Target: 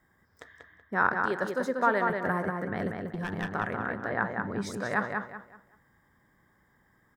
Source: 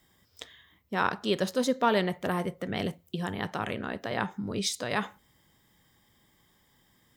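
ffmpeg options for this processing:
-filter_complex "[0:a]asettb=1/sr,asplit=3[a][b][c];[a]atrim=end=1.254[d];[b]atrim=start=1.25:end=2.1,asetpts=PTS-STARTPTS,afade=t=in:d=0.004:c=qsin,afade=t=out:st=0.846:d=0.004:c=qsin,highpass=f=370:p=1[e];[c]atrim=start=2.096[f];[d][e]acrossfade=d=0.004:c1=hsin:c2=qsin[g];[g][f]acrossfade=d=0.004:c1=qsin:c2=hsin,asettb=1/sr,asplit=3[h][i][j];[h]atrim=end=4.094[k];[i]atrim=start=4.09:end=4.59,asetpts=PTS-STARTPTS,afade=t=in:d=0.004:c=qsin,afade=t=out:st=0.496:d=0.004:c=qsin,acrossover=split=3900[l][m];[m]acompressor=threshold=-54dB:ratio=4:attack=1:release=60[n];[l][n]amix=inputs=2:normalize=0[o];[j]atrim=start=4.586[p];[k][o]acrossfade=d=0.004:c1=hsin:c2=qsin[q];[q][p]acrossfade=d=0.004:c1=qsin:c2=hsin,highshelf=f=2.2k:t=q:w=3:g=-9.5,asettb=1/sr,asplit=3[r][s][t];[r]atrim=end=3.034[u];[s]atrim=start=3.03:end=3.48,asetpts=PTS-STARTPTS,afade=t=in:d=0.004:c=qsin,afade=t=out:st=0.446:d=0.004:c=qsin,aeval=exprs='clip(val(0),-1,0.0376)':c=same[v];[t]atrim=start=3.476[w];[u][v]acrossfade=d=0.004:c1=hsin:c2=qsin[x];[x][w]acrossfade=d=0.004:c1=qsin:c2=hsin,asplit=2[y][z];[z]adelay=189,lowpass=f=4.3k:p=1,volume=-4dB,asplit=2[aa][ab];[ab]adelay=189,lowpass=f=4.3k:p=1,volume=0.31,asplit=2[ac][ad];[ad]adelay=189,lowpass=f=4.3k:p=1,volume=0.31,asplit=2[ae][af];[af]adelay=189,lowpass=f=4.3k:p=1,volume=0.31[ag];[y][aa][ac][ae][ag]amix=inputs=5:normalize=0,volume=-1.5dB"

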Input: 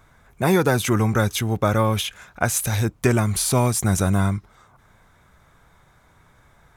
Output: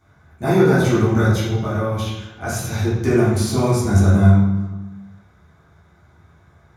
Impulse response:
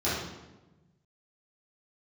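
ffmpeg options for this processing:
-filter_complex "[0:a]asettb=1/sr,asplit=3[a][b][c];[a]atrim=end=1.404[d];[b]atrim=start=1.4:end=2.47,asetpts=PTS-STARTPTS,afade=t=in:d=0.004:c=qsin,afade=t=out:st=1.066:d=0.004:c=qsin,acompressor=threshold=-29dB:ratio=1.5[e];[c]atrim=start=2.466[f];[d][e]acrossfade=d=0.004:c1=hsin:c2=qsin[g];[g][f]acrossfade=d=0.004:c1=qsin:c2=hsin[h];[1:a]atrim=start_sample=2205[i];[h][i]afir=irnorm=-1:irlink=0,volume=-11.5dB"

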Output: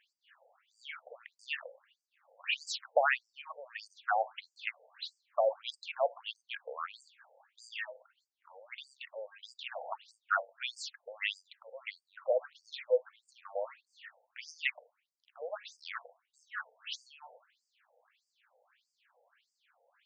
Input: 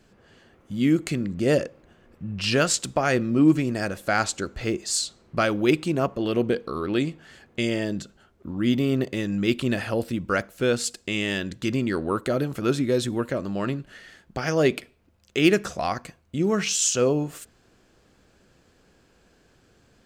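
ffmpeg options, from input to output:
-af "highshelf=f=4k:t=q:w=1.5:g=-8.5,afftfilt=real='re*between(b*sr/1024,610*pow(6600/610,0.5+0.5*sin(2*PI*1.6*pts/sr))/1.41,610*pow(6600/610,0.5+0.5*sin(2*PI*1.6*pts/sr))*1.41)':imag='im*between(b*sr/1024,610*pow(6600/610,0.5+0.5*sin(2*PI*1.6*pts/sr))/1.41,610*pow(6600/610,0.5+0.5*sin(2*PI*1.6*pts/sr))*1.41)':win_size=1024:overlap=0.75,volume=-2dB"

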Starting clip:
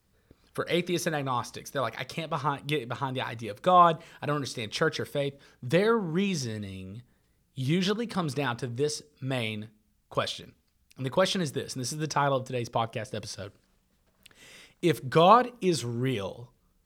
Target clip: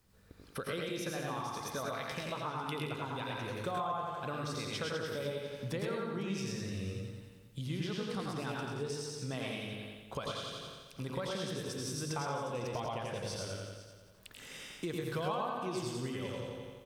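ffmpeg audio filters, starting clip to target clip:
-filter_complex "[0:a]asplit=2[a][b];[b]aecho=0:1:87|174|261|348|435|522|609:0.631|0.334|0.177|0.0939|0.0498|0.0264|0.014[c];[a][c]amix=inputs=2:normalize=0,acompressor=threshold=-39dB:ratio=4,asplit=2[d][e];[e]aecho=0:1:106|127|503:0.631|0.473|0.168[f];[d][f]amix=inputs=2:normalize=0"

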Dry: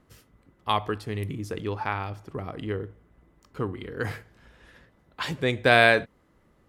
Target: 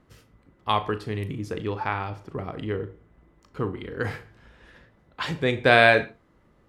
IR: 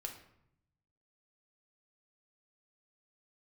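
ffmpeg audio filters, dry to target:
-filter_complex "[0:a]highshelf=f=8.7k:g=-11,asplit=2[a][b];[1:a]atrim=start_sample=2205,afade=t=out:st=0.16:d=0.01,atrim=end_sample=7497,adelay=36[c];[b][c]afir=irnorm=-1:irlink=0,volume=-8.5dB[d];[a][d]amix=inputs=2:normalize=0,volume=1.5dB"

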